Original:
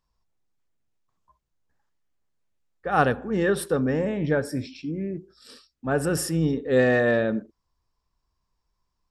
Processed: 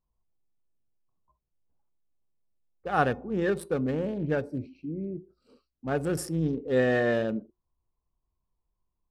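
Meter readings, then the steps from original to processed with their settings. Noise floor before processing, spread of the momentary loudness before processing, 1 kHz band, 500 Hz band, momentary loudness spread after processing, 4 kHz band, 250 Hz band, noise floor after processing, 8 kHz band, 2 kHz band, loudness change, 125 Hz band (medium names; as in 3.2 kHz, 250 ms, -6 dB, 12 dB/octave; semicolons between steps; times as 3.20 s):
-79 dBFS, 12 LU, -4.0 dB, -4.5 dB, 13 LU, -6.0 dB, -4.0 dB, -83 dBFS, -9.0 dB, -5.5 dB, -4.5 dB, -4.0 dB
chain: local Wiener filter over 25 samples; feedback comb 360 Hz, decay 0.2 s, harmonics all, mix 40%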